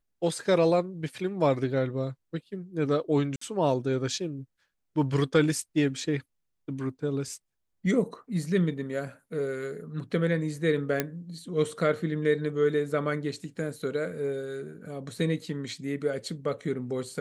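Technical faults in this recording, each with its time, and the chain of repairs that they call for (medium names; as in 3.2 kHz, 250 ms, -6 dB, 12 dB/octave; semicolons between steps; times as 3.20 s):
3.36–3.41 s: dropout 54 ms
11.00 s: pop -10 dBFS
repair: de-click; interpolate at 3.36 s, 54 ms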